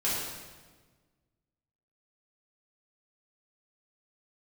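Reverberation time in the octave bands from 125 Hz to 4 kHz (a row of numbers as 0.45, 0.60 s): 1.9, 1.8, 1.5, 1.3, 1.2, 1.1 s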